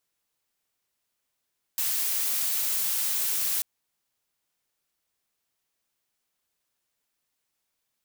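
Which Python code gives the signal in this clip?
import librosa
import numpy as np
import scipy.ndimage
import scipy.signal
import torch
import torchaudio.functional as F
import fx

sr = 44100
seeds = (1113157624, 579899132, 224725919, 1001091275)

y = fx.noise_colour(sr, seeds[0], length_s=1.84, colour='blue', level_db=-27.0)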